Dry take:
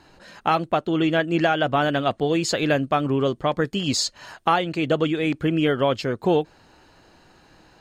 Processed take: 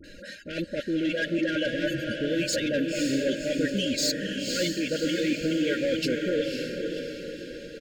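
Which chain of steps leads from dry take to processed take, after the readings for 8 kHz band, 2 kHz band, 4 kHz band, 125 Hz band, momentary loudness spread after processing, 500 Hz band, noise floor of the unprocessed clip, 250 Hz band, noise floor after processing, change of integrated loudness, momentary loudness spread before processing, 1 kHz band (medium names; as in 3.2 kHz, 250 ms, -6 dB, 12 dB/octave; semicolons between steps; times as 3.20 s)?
-1.0 dB, -3.5 dB, -2.0 dB, -9.5 dB, 10 LU, -5.0 dB, -55 dBFS, -3.0 dB, -45 dBFS, -5.0 dB, 4 LU, -23.5 dB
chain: spectral selection erased 1.86–2.13 s, 240–4500 Hz; reverb removal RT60 1.5 s; comb 3.7 ms, depth 52%; reverse; compression 10:1, threshold -27 dBFS, peak gain reduction 15 dB; reverse; phase dispersion highs, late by 41 ms, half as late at 1.1 kHz; saturation -28.5 dBFS, distortion -13 dB; brick-wall FIR band-stop 640–1400 Hz; on a send: echo that smears into a reverb 540 ms, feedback 51%, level -4 dB; on the sum: trim +6.5 dB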